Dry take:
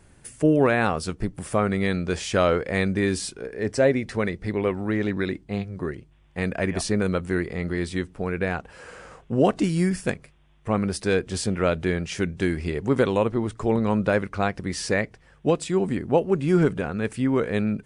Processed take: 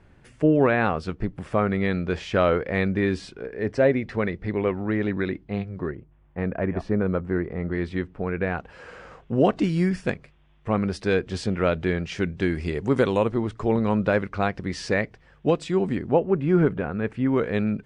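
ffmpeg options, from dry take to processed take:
-af "asetnsamples=n=441:p=0,asendcmd='5.91 lowpass f 1400;7.72 lowpass f 2500;8.57 lowpass f 4400;12.55 lowpass f 8000;13.41 lowpass f 4800;16.13 lowpass f 2200;17.26 lowpass f 4100',lowpass=3.1k"

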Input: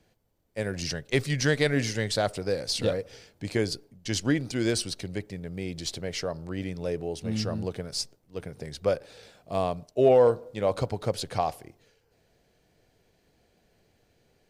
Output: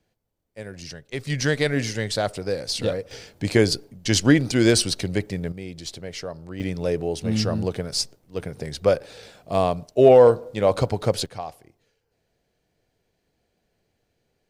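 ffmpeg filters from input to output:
-af "asetnsamples=n=441:p=0,asendcmd='1.27 volume volume 2dB;3.11 volume volume 9dB;5.52 volume volume -1.5dB;6.6 volume volume 6.5dB;11.26 volume volume -6dB',volume=-6dB"

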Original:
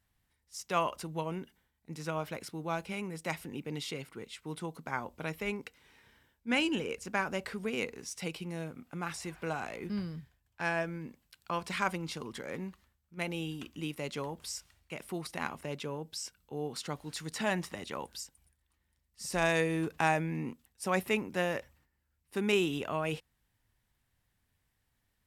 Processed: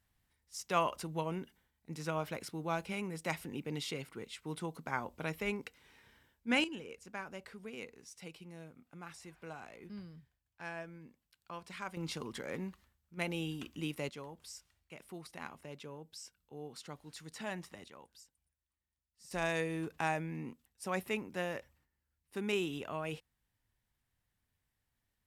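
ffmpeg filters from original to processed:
-af "asetnsamples=n=441:p=0,asendcmd='6.64 volume volume -11.5dB;11.97 volume volume -1dB;14.09 volume volume -9.5dB;17.88 volume volume -16dB;19.31 volume volume -6dB',volume=-1dB"

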